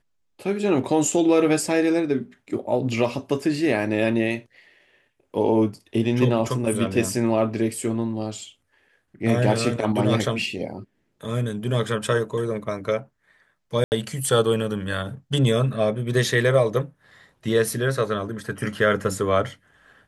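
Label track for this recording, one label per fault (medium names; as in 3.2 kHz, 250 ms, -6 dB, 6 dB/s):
13.840000	13.920000	dropout 79 ms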